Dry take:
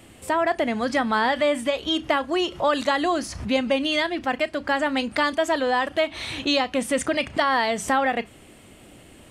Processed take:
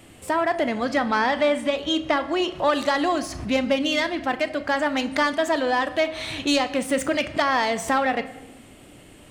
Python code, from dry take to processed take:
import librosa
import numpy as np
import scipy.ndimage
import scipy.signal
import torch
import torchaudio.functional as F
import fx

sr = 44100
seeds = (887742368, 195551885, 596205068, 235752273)

y = fx.self_delay(x, sr, depth_ms=0.054)
y = fx.high_shelf(y, sr, hz=11000.0, db=-12.0, at=(0.78, 2.59))
y = fx.room_shoebox(y, sr, seeds[0], volume_m3=650.0, walls='mixed', distance_m=0.38)